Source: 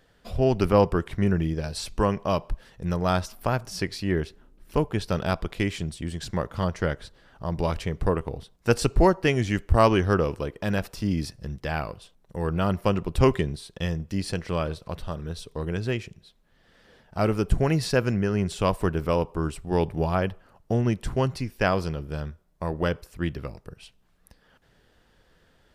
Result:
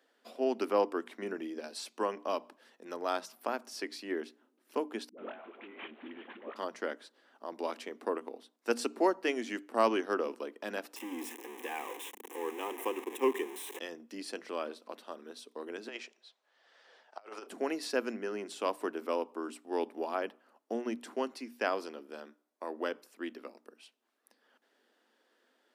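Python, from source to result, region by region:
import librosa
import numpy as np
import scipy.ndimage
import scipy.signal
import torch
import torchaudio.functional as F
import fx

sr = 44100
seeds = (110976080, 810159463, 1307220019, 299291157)

y = fx.chain(x, sr, fx.cvsd(bps=16000),
    fx.over_compress(threshold_db=-33.0, ratio=-1.0),
    fx.dispersion(late='highs', ms=90.0, hz=460.0), at=(5.09, 6.56))
y = fx.chain(y, sr, fx.zero_step(step_db=-25.0),
    fx.fixed_phaser(hz=930.0, stages=8), at=(10.96, 13.79))
y = fx.chain(y, sr, fx.cheby1_bandpass(low_hz=650.0, high_hz=6200.0, order=2),
    fx.over_compress(threshold_db=-36.0, ratio=-0.5), at=(15.88, 17.47))
y = scipy.signal.sosfilt(scipy.signal.cheby1(6, 1.0, 230.0, 'highpass', fs=sr, output='sos'), y)
y = fx.hum_notches(y, sr, base_hz=60, count=5)
y = y * 10.0 ** (-7.5 / 20.0)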